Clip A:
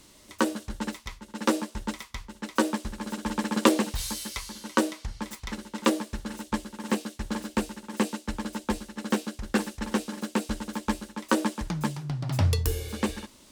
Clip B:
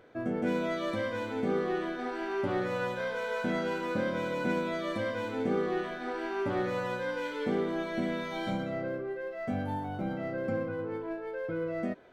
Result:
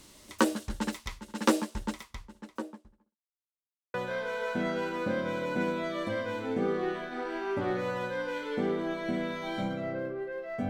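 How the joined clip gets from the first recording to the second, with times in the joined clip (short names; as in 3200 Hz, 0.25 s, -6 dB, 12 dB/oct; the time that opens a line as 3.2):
clip A
1.43–3.17 studio fade out
3.17–3.94 mute
3.94 switch to clip B from 2.83 s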